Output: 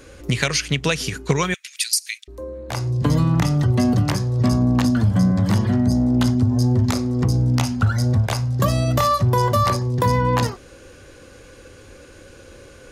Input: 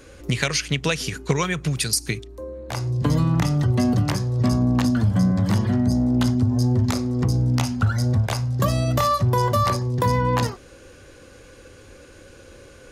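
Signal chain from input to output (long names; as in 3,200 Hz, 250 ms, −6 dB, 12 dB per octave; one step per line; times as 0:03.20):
0:01.54–0:02.28: Butterworth high-pass 1,900 Hz 36 dB per octave
level +2 dB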